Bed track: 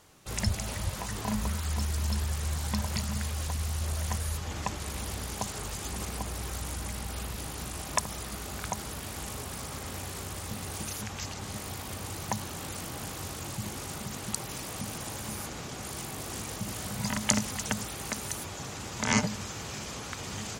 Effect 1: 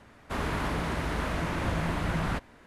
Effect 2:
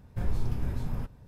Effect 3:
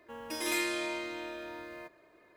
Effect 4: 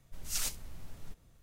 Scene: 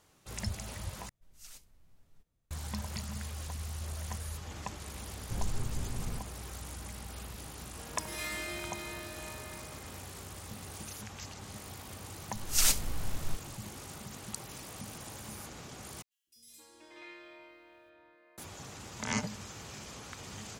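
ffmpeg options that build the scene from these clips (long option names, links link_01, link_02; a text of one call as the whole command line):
ffmpeg -i bed.wav -i cue0.wav -i cue1.wav -i cue2.wav -i cue3.wav -filter_complex "[4:a]asplit=2[link_01][link_02];[3:a]asplit=2[link_03][link_04];[0:a]volume=-7.5dB[link_05];[link_03]aecho=1:1:50|125|237.5|406.2|659.4|1039:0.794|0.631|0.501|0.398|0.316|0.251[link_06];[link_02]dynaudnorm=framelen=210:gausssize=3:maxgain=14.5dB[link_07];[link_04]acrossover=split=270|4100[link_08][link_09][link_10];[link_08]adelay=250[link_11];[link_09]adelay=480[link_12];[link_11][link_12][link_10]amix=inputs=3:normalize=0[link_13];[link_05]asplit=3[link_14][link_15][link_16];[link_14]atrim=end=1.094[link_17];[link_01]atrim=end=1.42,asetpts=PTS-STARTPTS,volume=-17.5dB[link_18];[link_15]atrim=start=2.506:end=16.024[link_19];[link_13]atrim=end=2.36,asetpts=PTS-STARTPTS,volume=-16.5dB[link_20];[link_16]atrim=start=18.376[link_21];[2:a]atrim=end=1.27,asetpts=PTS-STARTPTS,volume=-6dB,afade=type=in:duration=0.004:curve=hsin,afade=type=out:start_time=1.266:duration=0.004:curve=hsin,adelay=5140[link_22];[link_06]atrim=end=2.36,asetpts=PTS-STARTPTS,volume=-9dB,afade=type=in:duration=0.004:curve=hsin,afade=type=out:start_time=2.356:duration=0.004:curve=hsin,adelay=7670[link_23];[link_07]atrim=end=1.42,asetpts=PTS-STARTPTS,volume=-4dB,afade=type=in:duration=0.004:curve=hsin,afade=type=out:start_time=1.416:duration=0.004:curve=hsin,adelay=12230[link_24];[link_17][link_18]acrossfade=duration=0.004:curve1=hsin:curve2=hsin[link_25];[link_25][link_19]acrossfade=duration=0.004:curve1=hsin:curve2=hsin[link_26];[link_26][link_20]acrossfade=duration=0.004:curve1=hsin:curve2=hsin[link_27];[link_27][link_21]acrossfade=duration=0.004:curve1=hsin:curve2=hsin[link_28];[link_28][link_22][link_23][link_24]amix=inputs=4:normalize=0" out.wav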